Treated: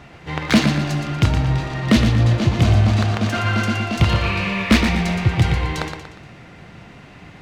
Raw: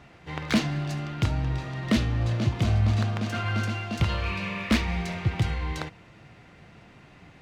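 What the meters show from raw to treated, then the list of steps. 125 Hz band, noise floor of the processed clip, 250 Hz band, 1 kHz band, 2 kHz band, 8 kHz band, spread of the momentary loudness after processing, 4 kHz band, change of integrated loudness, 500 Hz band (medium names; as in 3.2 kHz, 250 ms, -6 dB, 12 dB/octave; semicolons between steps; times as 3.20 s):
+8.5 dB, -43 dBFS, +9.5 dB, +9.5 dB, +9.5 dB, +9.5 dB, 7 LU, +9.5 dB, +9.0 dB, +9.5 dB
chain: modulated delay 119 ms, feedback 43%, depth 54 cents, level -7 dB; trim +8.5 dB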